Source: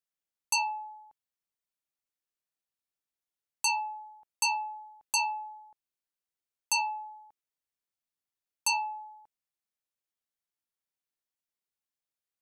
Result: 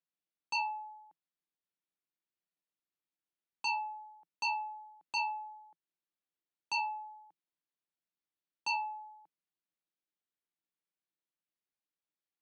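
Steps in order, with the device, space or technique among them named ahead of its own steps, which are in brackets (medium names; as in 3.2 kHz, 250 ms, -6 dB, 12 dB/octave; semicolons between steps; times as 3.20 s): guitar cabinet (cabinet simulation 110–4400 Hz, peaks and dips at 120 Hz -8 dB, 170 Hz +10 dB, 320 Hz +8 dB); trim -4 dB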